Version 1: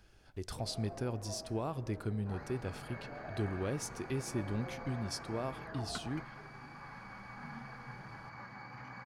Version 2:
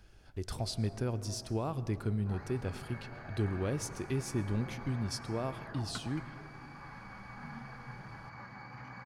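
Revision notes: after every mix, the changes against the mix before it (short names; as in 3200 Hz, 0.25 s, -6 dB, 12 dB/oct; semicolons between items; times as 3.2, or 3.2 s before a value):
speech: send +11.0 dB; first sound -7.5 dB; master: add low shelf 150 Hz +4.5 dB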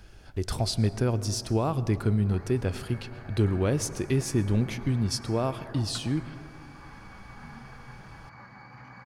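speech +8.5 dB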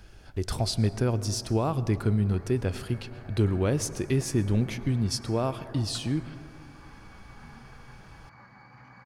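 second sound -4.0 dB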